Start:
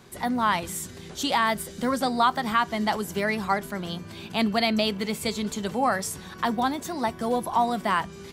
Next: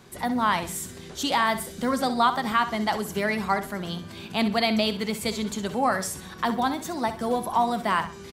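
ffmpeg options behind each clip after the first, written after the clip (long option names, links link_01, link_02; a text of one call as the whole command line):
ffmpeg -i in.wav -af "aecho=1:1:64|128|192:0.251|0.0754|0.0226" out.wav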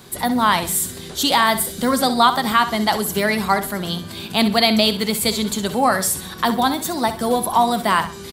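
ffmpeg -i in.wav -af "aexciter=amount=1.2:drive=7.9:freq=3400,volume=6.5dB" out.wav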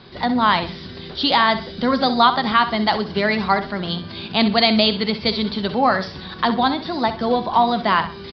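ffmpeg -i in.wav -af "aresample=11025,aresample=44100" out.wav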